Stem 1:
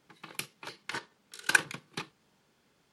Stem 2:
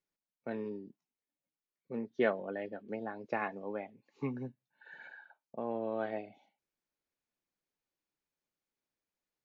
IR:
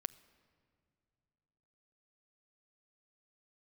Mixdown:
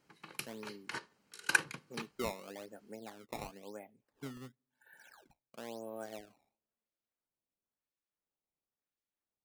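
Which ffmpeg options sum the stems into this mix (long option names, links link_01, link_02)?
-filter_complex "[0:a]bandreject=frequency=3500:width=7.7,volume=-4.5dB[link_01];[1:a]acrusher=samples=16:mix=1:aa=0.000001:lfo=1:lforange=25.6:lforate=0.97,volume=-9dB,asplit=2[link_02][link_03];[link_03]volume=-23dB[link_04];[2:a]atrim=start_sample=2205[link_05];[link_04][link_05]afir=irnorm=-1:irlink=0[link_06];[link_01][link_02][link_06]amix=inputs=3:normalize=0"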